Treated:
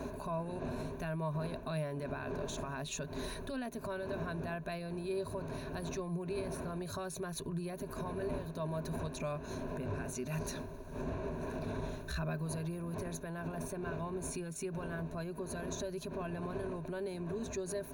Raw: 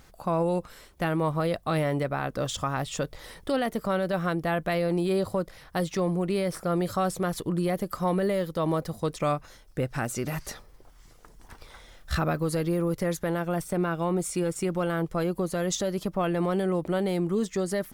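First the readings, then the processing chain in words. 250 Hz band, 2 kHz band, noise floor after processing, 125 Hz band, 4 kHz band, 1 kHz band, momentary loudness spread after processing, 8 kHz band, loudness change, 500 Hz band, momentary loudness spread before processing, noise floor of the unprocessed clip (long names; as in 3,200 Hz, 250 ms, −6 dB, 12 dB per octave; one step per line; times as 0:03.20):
−11.5 dB, −10.0 dB, −46 dBFS, −9.5 dB, −10.5 dB, −12.5 dB, 3 LU, −8.0 dB, −11.5 dB, −11.5 dB, 6 LU, −54 dBFS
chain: wind on the microphone 460 Hz −33 dBFS
downward compressor, threshold −33 dBFS, peak gain reduction 16.5 dB
brickwall limiter −31.5 dBFS, peak gain reduction 9.5 dB
EQ curve with evenly spaced ripples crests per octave 1.5, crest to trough 13 dB
level −1 dB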